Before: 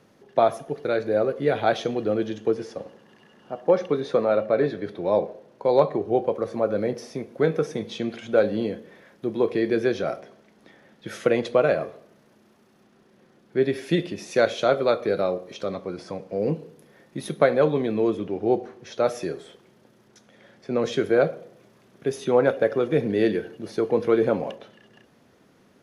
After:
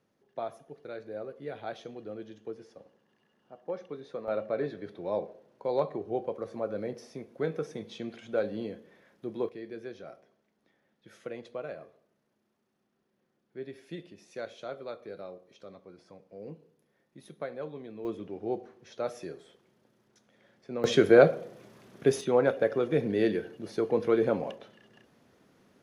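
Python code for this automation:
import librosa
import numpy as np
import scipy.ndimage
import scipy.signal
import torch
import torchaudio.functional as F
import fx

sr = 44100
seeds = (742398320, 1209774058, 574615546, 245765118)

y = fx.gain(x, sr, db=fx.steps((0.0, -17.0), (4.28, -10.0), (9.49, -19.0), (18.05, -11.0), (20.84, 2.0), (22.21, -5.0)))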